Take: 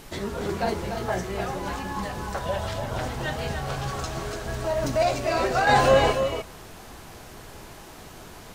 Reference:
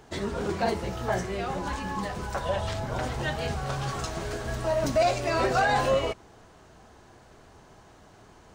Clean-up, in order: noise print and reduce 10 dB; inverse comb 291 ms -7 dB; trim 0 dB, from 5.67 s -6 dB

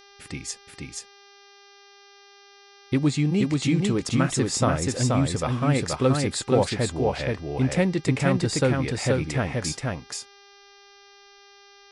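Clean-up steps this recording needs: de-hum 400.3 Hz, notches 15; inverse comb 479 ms -3 dB

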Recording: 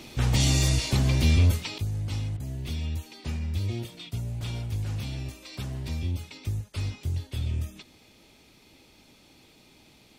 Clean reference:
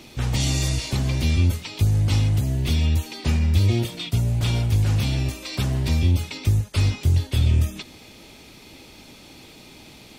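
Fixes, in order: clip repair -14 dBFS; interpolate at 2.37 s, 28 ms; gain correction +11 dB, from 1.78 s

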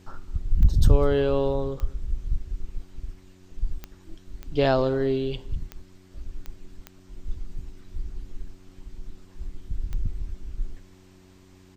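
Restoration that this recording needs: de-click; de-hum 93 Hz, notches 4; inverse comb 198 ms -22.5 dB

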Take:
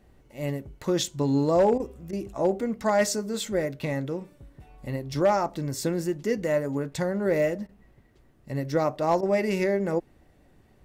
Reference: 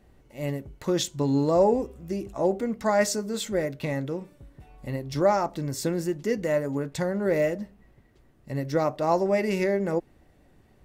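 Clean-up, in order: clip repair -14 dBFS; interpolate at 1.78/2.11/7.67/9.21 s, 18 ms

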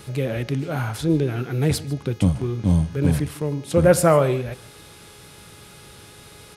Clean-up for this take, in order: de-hum 417.3 Hz, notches 16; inverse comb 150 ms -20 dB

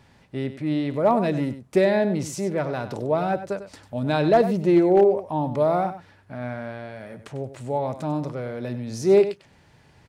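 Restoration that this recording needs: clip repair -9.5 dBFS; inverse comb 97 ms -12 dB

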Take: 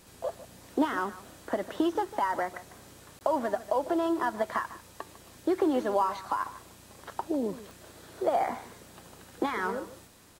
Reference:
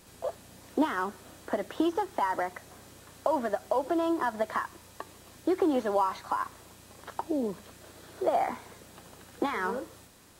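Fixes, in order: de-click; interpolate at 3.19 s, 19 ms; inverse comb 150 ms -16 dB

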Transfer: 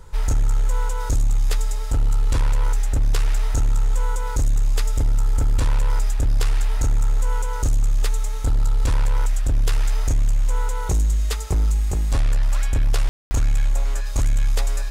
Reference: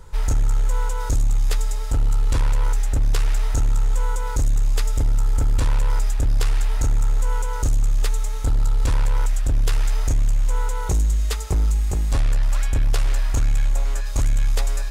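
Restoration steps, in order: room tone fill 13.09–13.31 s

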